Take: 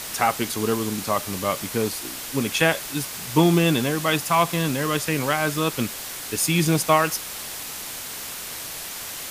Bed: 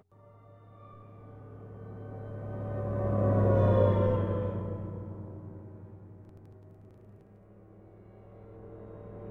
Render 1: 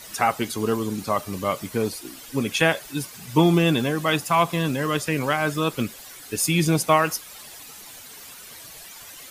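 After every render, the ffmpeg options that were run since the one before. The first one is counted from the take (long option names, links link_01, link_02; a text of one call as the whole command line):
ffmpeg -i in.wav -af "afftdn=noise_reduction=12:noise_floor=-34" out.wav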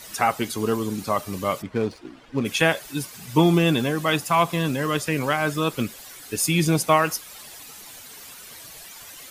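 ffmpeg -i in.wav -filter_complex "[0:a]asplit=3[link_01][link_02][link_03];[link_01]afade=type=out:start_time=1.61:duration=0.02[link_04];[link_02]adynamicsmooth=sensitivity=4.5:basefreq=1700,afade=type=in:start_time=1.61:duration=0.02,afade=type=out:start_time=2.44:duration=0.02[link_05];[link_03]afade=type=in:start_time=2.44:duration=0.02[link_06];[link_04][link_05][link_06]amix=inputs=3:normalize=0" out.wav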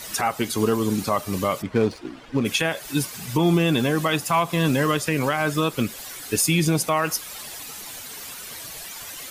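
ffmpeg -i in.wav -af "alimiter=limit=-15.5dB:level=0:latency=1:release=210,acontrast=32" out.wav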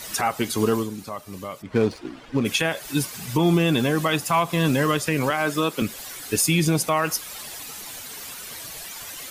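ffmpeg -i in.wav -filter_complex "[0:a]asettb=1/sr,asplit=3[link_01][link_02][link_03];[link_01]atrim=end=5.304[link_04];[link_02]atrim=start=5.3:end=5.82,asetpts=PTS-STARTPTS,afade=type=in:duration=0.004:curve=qsin,afade=type=out:start_time=0.516:duration=0.004:curve=qsin,highpass=frequency=170:width=0.5412,highpass=frequency=170:width=1.3066[link_05];[link_03]atrim=start=5.816[link_06];[link_04][link_05]acrossfade=duration=0.004:curve1=hsin:curve2=qsin[link_07];[link_07][link_06]acrossfade=duration=0.004:curve1=qsin:curve2=hsin,asplit=3[link_08][link_09][link_10];[link_08]atrim=end=0.93,asetpts=PTS-STARTPTS,afade=type=out:start_time=0.79:duration=0.14:curve=qua:silence=0.298538[link_11];[link_09]atrim=start=0.93:end=1.6,asetpts=PTS-STARTPTS,volume=-10.5dB[link_12];[link_10]atrim=start=1.6,asetpts=PTS-STARTPTS,afade=type=in:duration=0.14:curve=qua:silence=0.298538[link_13];[link_11][link_12][link_13]concat=n=3:v=0:a=1" out.wav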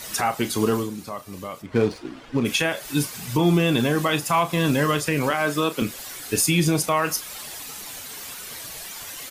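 ffmpeg -i in.wav -filter_complex "[0:a]asplit=2[link_01][link_02];[link_02]adelay=34,volume=-11dB[link_03];[link_01][link_03]amix=inputs=2:normalize=0" out.wav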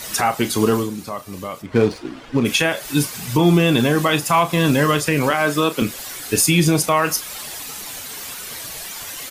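ffmpeg -i in.wav -af "volume=4.5dB" out.wav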